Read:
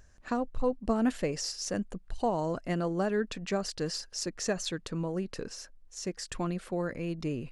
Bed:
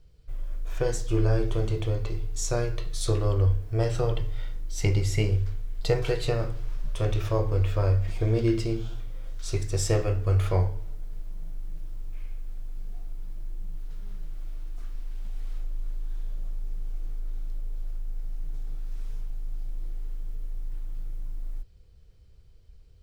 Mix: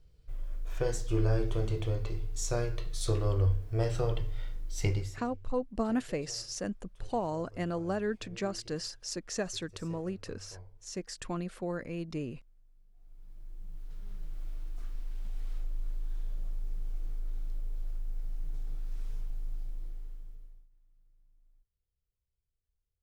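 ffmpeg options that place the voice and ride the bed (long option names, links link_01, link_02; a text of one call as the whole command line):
ffmpeg -i stem1.wav -i stem2.wav -filter_complex "[0:a]adelay=4900,volume=-3dB[link_01];[1:a]volume=19.5dB,afade=type=out:start_time=4.84:duration=0.36:silence=0.0749894,afade=type=in:start_time=12.93:duration=1.48:silence=0.0630957,afade=type=out:start_time=19.44:duration=1.24:silence=0.0354813[link_02];[link_01][link_02]amix=inputs=2:normalize=0" out.wav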